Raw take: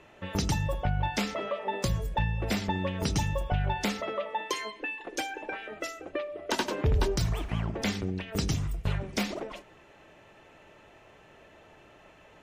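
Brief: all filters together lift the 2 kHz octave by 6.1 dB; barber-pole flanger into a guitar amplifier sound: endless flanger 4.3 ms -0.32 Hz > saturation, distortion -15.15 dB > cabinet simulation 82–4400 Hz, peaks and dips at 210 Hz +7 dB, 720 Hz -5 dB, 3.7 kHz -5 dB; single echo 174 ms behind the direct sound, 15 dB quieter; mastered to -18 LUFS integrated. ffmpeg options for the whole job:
-filter_complex "[0:a]equalizer=f=2000:t=o:g=8,aecho=1:1:174:0.178,asplit=2[s0][s1];[s1]adelay=4.3,afreqshift=-0.32[s2];[s0][s2]amix=inputs=2:normalize=1,asoftclip=threshold=0.0562,highpass=82,equalizer=f=210:t=q:w=4:g=7,equalizer=f=720:t=q:w=4:g=-5,equalizer=f=3700:t=q:w=4:g=-5,lowpass=f=4400:w=0.5412,lowpass=f=4400:w=1.3066,volume=6.68"

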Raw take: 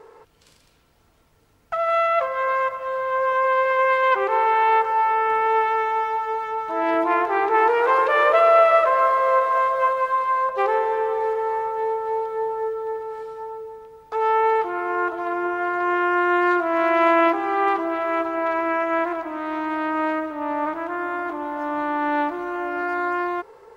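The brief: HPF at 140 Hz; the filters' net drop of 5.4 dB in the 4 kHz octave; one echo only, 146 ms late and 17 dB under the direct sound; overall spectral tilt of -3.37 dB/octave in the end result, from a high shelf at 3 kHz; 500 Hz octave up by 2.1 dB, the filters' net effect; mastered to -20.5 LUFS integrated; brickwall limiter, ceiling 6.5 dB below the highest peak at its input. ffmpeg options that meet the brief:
-af "highpass=140,equalizer=f=500:t=o:g=3,highshelf=f=3000:g=-4.5,equalizer=f=4000:t=o:g=-4.5,alimiter=limit=0.266:level=0:latency=1,aecho=1:1:146:0.141,volume=1.19"

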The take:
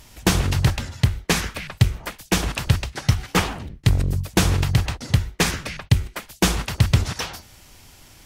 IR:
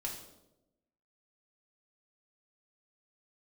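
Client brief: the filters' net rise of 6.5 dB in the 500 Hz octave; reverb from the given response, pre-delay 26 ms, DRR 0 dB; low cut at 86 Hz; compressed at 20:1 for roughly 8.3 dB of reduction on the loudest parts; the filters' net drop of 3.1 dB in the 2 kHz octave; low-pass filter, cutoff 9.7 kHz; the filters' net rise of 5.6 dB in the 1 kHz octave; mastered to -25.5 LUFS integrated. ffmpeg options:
-filter_complex "[0:a]highpass=86,lowpass=9700,equalizer=f=500:t=o:g=7,equalizer=f=1000:t=o:g=6.5,equalizer=f=2000:t=o:g=-6.5,acompressor=threshold=0.1:ratio=20,asplit=2[s0][s1];[1:a]atrim=start_sample=2205,adelay=26[s2];[s1][s2]afir=irnorm=-1:irlink=0,volume=0.944[s3];[s0][s3]amix=inputs=2:normalize=0"

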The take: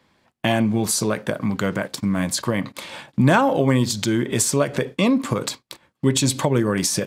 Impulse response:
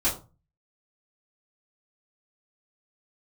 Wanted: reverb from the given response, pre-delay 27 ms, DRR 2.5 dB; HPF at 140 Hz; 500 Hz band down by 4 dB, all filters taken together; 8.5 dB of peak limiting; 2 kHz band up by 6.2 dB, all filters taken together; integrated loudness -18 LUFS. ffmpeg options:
-filter_complex "[0:a]highpass=140,equalizer=f=500:t=o:g=-5.5,equalizer=f=2000:t=o:g=8.5,alimiter=limit=0.282:level=0:latency=1,asplit=2[s0][s1];[1:a]atrim=start_sample=2205,adelay=27[s2];[s1][s2]afir=irnorm=-1:irlink=0,volume=0.224[s3];[s0][s3]amix=inputs=2:normalize=0,volume=1.41"

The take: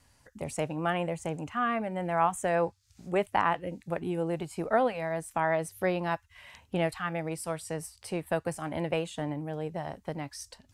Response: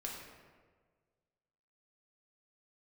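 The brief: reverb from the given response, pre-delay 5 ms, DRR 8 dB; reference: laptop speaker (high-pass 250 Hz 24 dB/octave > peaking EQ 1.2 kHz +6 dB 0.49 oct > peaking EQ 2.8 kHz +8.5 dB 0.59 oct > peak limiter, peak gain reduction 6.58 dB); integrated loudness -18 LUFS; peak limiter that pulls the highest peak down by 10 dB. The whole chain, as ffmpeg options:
-filter_complex "[0:a]alimiter=limit=0.0891:level=0:latency=1,asplit=2[s0][s1];[1:a]atrim=start_sample=2205,adelay=5[s2];[s1][s2]afir=irnorm=-1:irlink=0,volume=0.422[s3];[s0][s3]amix=inputs=2:normalize=0,highpass=f=250:w=0.5412,highpass=f=250:w=1.3066,equalizer=f=1200:t=o:w=0.49:g=6,equalizer=f=2800:t=o:w=0.59:g=8.5,volume=6.31,alimiter=limit=0.531:level=0:latency=1"

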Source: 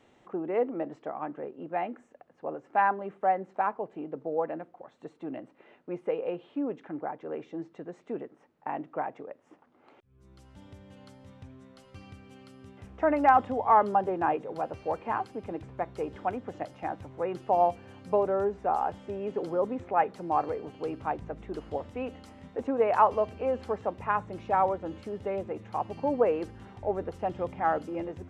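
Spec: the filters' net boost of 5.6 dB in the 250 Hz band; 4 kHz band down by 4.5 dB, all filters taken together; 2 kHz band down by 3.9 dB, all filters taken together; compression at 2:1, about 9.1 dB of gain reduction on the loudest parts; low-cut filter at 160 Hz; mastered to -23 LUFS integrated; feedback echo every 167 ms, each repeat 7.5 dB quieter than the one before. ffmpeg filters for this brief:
-af "highpass=160,equalizer=f=250:t=o:g=8,equalizer=f=2000:t=o:g=-5,equalizer=f=4000:t=o:g=-4,acompressor=threshold=0.0224:ratio=2,aecho=1:1:167|334|501|668|835:0.422|0.177|0.0744|0.0312|0.0131,volume=3.76"

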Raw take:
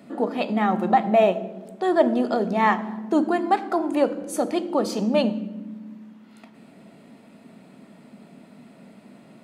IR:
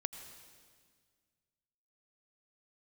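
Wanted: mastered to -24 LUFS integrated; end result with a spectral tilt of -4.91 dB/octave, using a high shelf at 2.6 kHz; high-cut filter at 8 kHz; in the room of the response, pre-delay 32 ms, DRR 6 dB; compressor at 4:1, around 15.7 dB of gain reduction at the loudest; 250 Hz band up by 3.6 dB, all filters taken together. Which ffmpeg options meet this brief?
-filter_complex "[0:a]lowpass=8000,equalizer=f=250:t=o:g=4.5,highshelf=f=2600:g=-4.5,acompressor=threshold=0.0251:ratio=4,asplit=2[s0][s1];[1:a]atrim=start_sample=2205,adelay=32[s2];[s1][s2]afir=irnorm=-1:irlink=0,volume=0.531[s3];[s0][s3]amix=inputs=2:normalize=0,volume=2.82"

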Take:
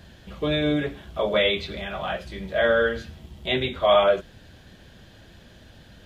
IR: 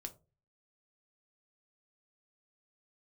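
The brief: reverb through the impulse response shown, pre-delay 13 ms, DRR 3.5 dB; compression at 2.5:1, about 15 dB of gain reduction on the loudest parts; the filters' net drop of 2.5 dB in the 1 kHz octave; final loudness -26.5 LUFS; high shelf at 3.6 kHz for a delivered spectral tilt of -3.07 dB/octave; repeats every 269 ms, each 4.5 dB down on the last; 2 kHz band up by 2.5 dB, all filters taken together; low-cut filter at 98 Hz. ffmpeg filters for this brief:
-filter_complex "[0:a]highpass=98,equalizer=f=1000:t=o:g=-5,equalizer=f=2000:t=o:g=7,highshelf=f=3600:g=-8,acompressor=threshold=0.0112:ratio=2.5,aecho=1:1:269|538|807|1076|1345|1614|1883|2152|2421:0.596|0.357|0.214|0.129|0.0772|0.0463|0.0278|0.0167|0.01,asplit=2[s0][s1];[1:a]atrim=start_sample=2205,adelay=13[s2];[s1][s2]afir=irnorm=-1:irlink=0,volume=1.06[s3];[s0][s3]amix=inputs=2:normalize=0,volume=2.37"

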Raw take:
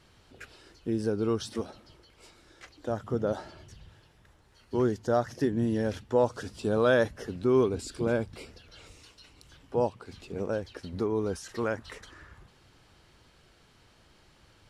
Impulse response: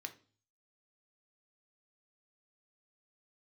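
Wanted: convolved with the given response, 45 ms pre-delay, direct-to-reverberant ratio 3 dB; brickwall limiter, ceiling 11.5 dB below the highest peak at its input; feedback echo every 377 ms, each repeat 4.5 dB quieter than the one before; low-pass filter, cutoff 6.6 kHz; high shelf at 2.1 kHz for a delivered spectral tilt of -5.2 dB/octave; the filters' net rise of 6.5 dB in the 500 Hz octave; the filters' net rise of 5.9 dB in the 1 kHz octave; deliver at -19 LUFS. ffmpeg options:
-filter_complex "[0:a]lowpass=6600,equalizer=f=500:t=o:g=6.5,equalizer=f=1000:t=o:g=4,highshelf=f=2100:g=6.5,alimiter=limit=0.133:level=0:latency=1,aecho=1:1:377|754|1131|1508|1885|2262|2639|3016|3393:0.596|0.357|0.214|0.129|0.0772|0.0463|0.0278|0.0167|0.01,asplit=2[s0][s1];[1:a]atrim=start_sample=2205,adelay=45[s2];[s1][s2]afir=irnorm=-1:irlink=0,volume=0.944[s3];[s0][s3]amix=inputs=2:normalize=0,volume=2.66"

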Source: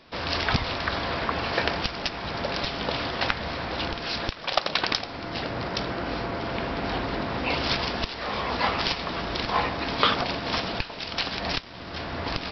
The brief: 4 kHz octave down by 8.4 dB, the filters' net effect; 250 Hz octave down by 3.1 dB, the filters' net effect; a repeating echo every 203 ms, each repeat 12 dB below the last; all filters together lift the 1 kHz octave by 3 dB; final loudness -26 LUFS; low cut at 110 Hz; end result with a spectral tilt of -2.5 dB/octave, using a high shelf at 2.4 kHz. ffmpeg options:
-af "highpass=110,equalizer=f=250:t=o:g=-4,equalizer=f=1000:t=o:g=5,highshelf=f=2400:g=-3.5,equalizer=f=4000:t=o:g=-8,aecho=1:1:203|406|609:0.251|0.0628|0.0157,volume=1.33"

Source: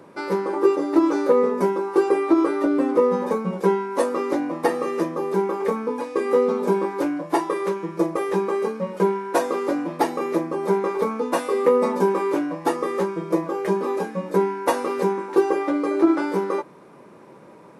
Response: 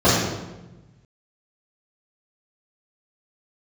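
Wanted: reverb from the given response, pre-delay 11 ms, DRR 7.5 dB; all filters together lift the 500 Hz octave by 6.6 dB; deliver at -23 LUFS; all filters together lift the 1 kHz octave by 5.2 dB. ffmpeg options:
-filter_complex "[0:a]equalizer=f=500:t=o:g=7.5,equalizer=f=1000:t=o:g=4,asplit=2[s0][s1];[1:a]atrim=start_sample=2205,adelay=11[s2];[s1][s2]afir=irnorm=-1:irlink=0,volume=0.0251[s3];[s0][s3]amix=inputs=2:normalize=0,volume=0.376"

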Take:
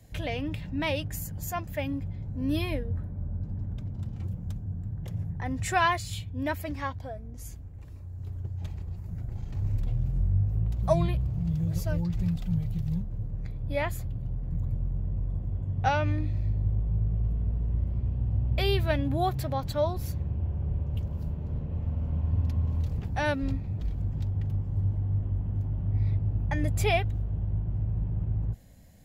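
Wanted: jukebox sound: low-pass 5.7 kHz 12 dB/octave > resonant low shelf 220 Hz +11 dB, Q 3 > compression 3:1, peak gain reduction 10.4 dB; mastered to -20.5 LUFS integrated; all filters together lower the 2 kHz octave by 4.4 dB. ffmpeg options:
-af "lowpass=5700,lowshelf=f=220:t=q:w=3:g=11,equalizer=f=2000:t=o:g=-5.5,acompressor=threshold=0.112:ratio=3,volume=1.33"

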